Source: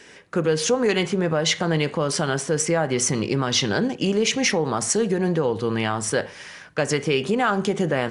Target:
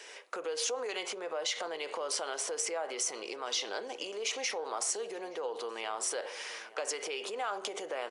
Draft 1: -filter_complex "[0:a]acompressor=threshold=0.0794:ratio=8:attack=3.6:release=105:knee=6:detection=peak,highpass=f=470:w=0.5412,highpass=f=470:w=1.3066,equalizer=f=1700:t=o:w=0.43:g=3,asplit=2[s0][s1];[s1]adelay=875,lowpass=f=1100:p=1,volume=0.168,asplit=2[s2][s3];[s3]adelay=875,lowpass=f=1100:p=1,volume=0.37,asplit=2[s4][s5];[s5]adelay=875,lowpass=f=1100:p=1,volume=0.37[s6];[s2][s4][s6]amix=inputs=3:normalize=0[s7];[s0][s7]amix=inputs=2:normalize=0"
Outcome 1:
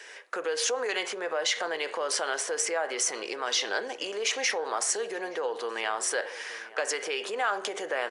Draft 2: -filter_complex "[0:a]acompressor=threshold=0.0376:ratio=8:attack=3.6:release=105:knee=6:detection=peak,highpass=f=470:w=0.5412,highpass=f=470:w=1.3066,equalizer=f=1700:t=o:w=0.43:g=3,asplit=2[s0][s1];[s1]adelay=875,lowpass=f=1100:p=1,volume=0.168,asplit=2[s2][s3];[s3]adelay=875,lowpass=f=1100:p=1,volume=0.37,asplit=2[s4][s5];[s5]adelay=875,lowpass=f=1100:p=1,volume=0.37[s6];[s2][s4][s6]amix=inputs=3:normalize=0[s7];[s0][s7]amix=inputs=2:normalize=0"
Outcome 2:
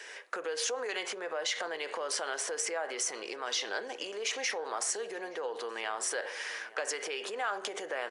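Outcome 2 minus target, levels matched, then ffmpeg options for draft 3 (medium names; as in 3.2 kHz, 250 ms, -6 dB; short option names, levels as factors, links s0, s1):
2 kHz band +4.0 dB
-filter_complex "[0:a]acompressor=threshold=0.0376:ratio=8:attack=3.6:release=105:knee=6:detection=peak,highpass=f=470:w=0.5412,highpass=f=470:w=1.3066,equalizer=f=1700:t=o:w=0.43:g=-6,asplit=2[s0][s1];[s1]adelay=875,lowpass=f=1100:p=1,volume=0.168,asplit=2[s2][s3];[s3]adelay=875,lowpass=f=1100:p=1,volume=0.37,asplit=2[s4][s5];[s5]adelay=875,lowpass=f=1100:p=1,volume=0.37[s6];[s2][s4][s6]amix=inputs=3:normalize=0[s7];[s0][s7]amix=inputs=2:normalize=0"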